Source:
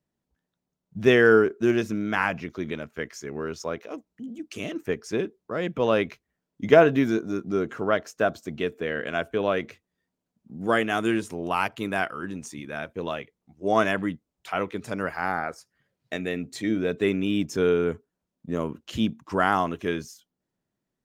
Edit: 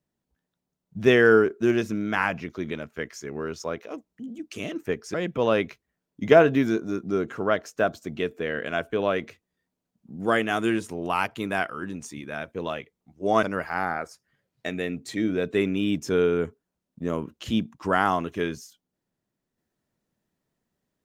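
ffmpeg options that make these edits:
ffmpeg -i in.wav -filter_complex "[0:a]asplit=3[link_01][link_02][link_03];[link_01]atrim=end=5.142[link_04];[link_02]atrim=start=5.548:end=13.842[link_05];[link_03]atrim=start=14.898[link_06];[link_04][link_05]acrossfade=duration=0.004:curve1=hsin:curve2=hsin[link_07];[link_07][link_06]acrossfade=duration=0.004:curve1=hsin:curve2=hsin" out.wav

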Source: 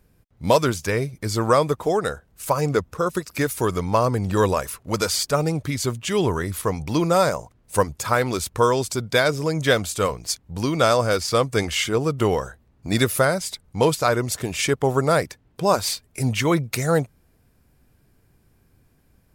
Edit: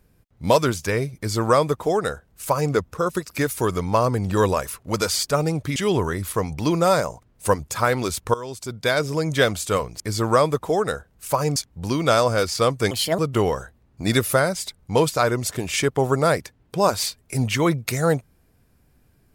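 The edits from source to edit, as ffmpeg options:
ffmpeg -i in.wav -filter_complex "[0:a]asplit=7[link_01][link_02][link_03][link_04][link_05][link_06][link_07];[link_01]atrim=end=5.762[link_08];[link_02]atrim=start=6.048:end=8.63,asetpts=PTS-STARTPTS,afade=type=out:start_time=2.578:duration=0.004:curve=hsin:silence=0.11885[link_09];[link_03]atrim=start=8.63:end=10.292,asetpts=PTS-STARTPTS,afade=type=in:duration=0.77:silence=0.11885[link_10];[link_04]atrim=start=1.168:end=2.732[link_11];[link_05]atrim=start=10.288:end=11.644[link_12];[link_06]atrim=start=11.64:end=12.04,asetpts=PTS-STARTPTS,asetrate=63945,aresample=44100[link_13];[link_07]atrim=start=12.036[link_14];[link_09][link_10]concat=n=2:v=0:a=1[link_15];[link_08][link_15]acrossfade=duration=0.004:curve1=hsin:curve2=hsin[link_16];[link_16][link_11]acrossfade=duration=0.004:curve1=hsin:curve2=hsin[link_17];[link_17][link_12]acrossfade=duration=0.004:curve1=hsin:curve2=hsin[link_18];[link_18][link_13]acrossfade=duration=0.004:curve1=hsin:curve2=hsin[link_19];[link_19][link_14]acrossfade=duration=0.004:curve1=hsin:curve2=hsin" out.wav

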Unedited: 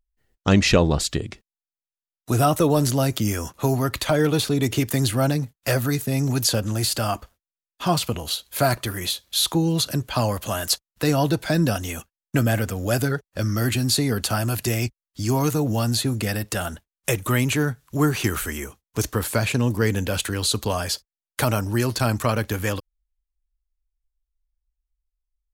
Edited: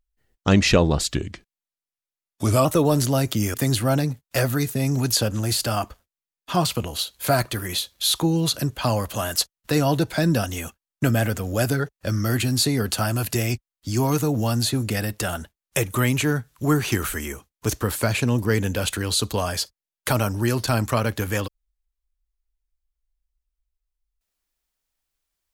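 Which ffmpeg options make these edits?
ffmpeg -i in.wav -filter_complex "[0:a]asplit=4[link_01][link_02][link_03][link_04];[link_01]atrim=end=1.154[link_05];[link_02]atrim=start=1.15:end=2.5,asetpts=PTS-STARTPTS,asetrate=39690,aresample=44100[link_06];[link_03]atrim=start=2.496:end=3.392[link_07];[link_04]atrim=start=4.858[link_08];[link_05][link_06]acrossfade=duration=0.004:curve1=hsin:curve2=hsin[link_09];[link_09][link_07]acrossfade=duration=0.004:curve1=hsin:curve2=hsin[link_10];[link_10][link_08]acrossfade=duration=0.004:curve1=hsin:curve2=hsin" out.wav

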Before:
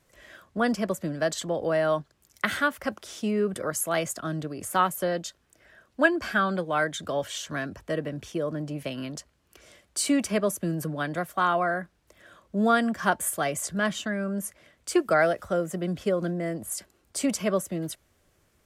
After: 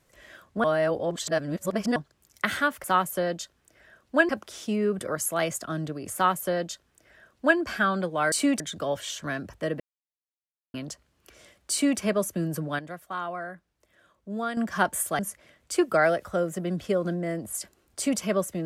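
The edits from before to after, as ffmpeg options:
ffmpeg -i in.wav -filter_complex "[0:a]asplit=12[link_01][link_02][link_03][link_04][link_05][link_06][link_07][link_08][link_09][link_10][link_11][link_12];[link_01]atrim=end=0.642[link_13];[link_02]atrim=start=0.638:end=1.962,asetpts=PTS-STARTPTS,areverse[link_14];[link_03]atrim=start=1.958:end=2.842[link_15];[link_04]atrim=start=4.688:end=6.142[link_16];[link_05]atrim=start=2.838:end=6.872[link_17];[link_06]atrim=start=9.978:end=10.262[link_18];[link_07]atrim=start=6.868:end=8.07,asetpts=PTS-STARTPTS,afade=type=out:start_time=1.198:duration=0.004:curve=hsin[link_19];[link_08]atrim=start=8.07:end=9.01,asetpts=PTS-STARTPTS,volume=0[link_20];[link_09]atrim=start=9.01:end=11.062,asetpts=PTS-STARTPTS,afade=type=in:duration=0.004:curve=hsin[link_21];[link_10]atrim=start=11.058:end=12.842,asetpts=PTS-STARTPTS,volume=-9dB[link_22];[link_11]atrim=start=12.838:end=13.462[link_23];[link_12]atrim=start=14.358[link_24];[link_13][link_14]acrossfade=duration=0.004:curve1=hsin:curve2=hsin[link_25];[link_25][link_15]acrossfade=duration=0.004:curve1=hsin:curve2=hsin[link_26];[link_26][link_16]acrossfade=duration=0.004:curve1=hsin:curve2=hsin[link_27];[link_27][link_17]acrossfade=duration=0.004:curve1=hsin:curve2=hsin[link_28];[link_28][link_18]acrossfade=duration=0.004:curve1=hsin:curve2=hsin[link_29];[link_19][link_20][link_21]concat=n=3:v=0:a=1[link_30];[link_29][link_30]acrossfade=duration=0.004:curve1=hsin:curve2=hsin[link_31];[link_31][link_22]acrossfade=duration=0.004:curve1=hsin:curve2=hsin[link_32];[link_32][link_23]acrossfade=duration=0.004:curve1=hsin:curve2=hsin[link_33];[link_33][link_24]acrossfade=duration=0.004:curve1=hsin:curve2=hsin" out.wav

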